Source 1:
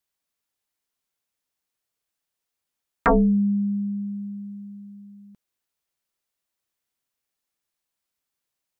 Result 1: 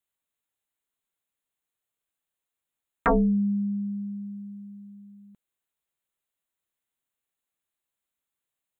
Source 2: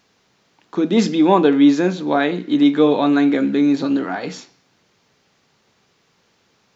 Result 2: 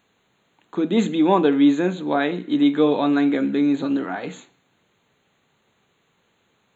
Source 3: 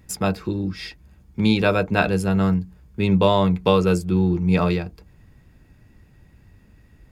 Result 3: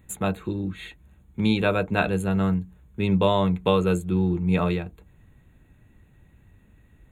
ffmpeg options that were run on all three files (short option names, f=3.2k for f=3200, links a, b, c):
-af "asuperstop=centerf=5200:order=8:qfactor=2.2,volume=-3.5dB"